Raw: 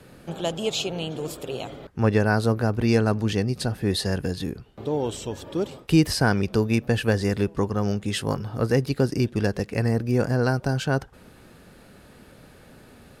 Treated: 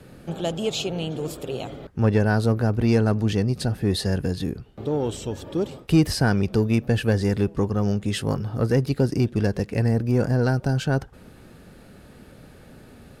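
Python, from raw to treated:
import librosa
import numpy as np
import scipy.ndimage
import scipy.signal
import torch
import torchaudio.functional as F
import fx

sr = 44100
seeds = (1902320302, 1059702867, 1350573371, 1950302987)

p1 = fx.low_shelf(x, sr, hz=440.0, db=5.0)
p2 = fx.notch(p1, sr, hz=1000.0, q=23.0)
p3 = 10.0 ** (-18.0 / 20.0) * np.tanh(p2 / 10.0 ** (-18.0 / 20.0))
p4 = p2 + (p3 * librosa.db_to_amplitude(-4.0))
y = p4 * librosa.db_to_amplitude(-5.0)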